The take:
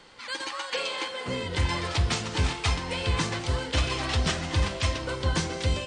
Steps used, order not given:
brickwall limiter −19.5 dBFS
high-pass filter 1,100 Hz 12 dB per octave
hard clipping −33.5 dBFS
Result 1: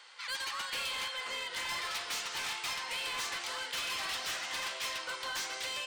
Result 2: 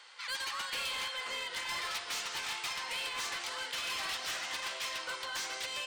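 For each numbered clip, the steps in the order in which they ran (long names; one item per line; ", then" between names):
high-pass filter, then brickwall limiter, then hard clipping
brickwall limiter, then high-pass filter, then hard clipping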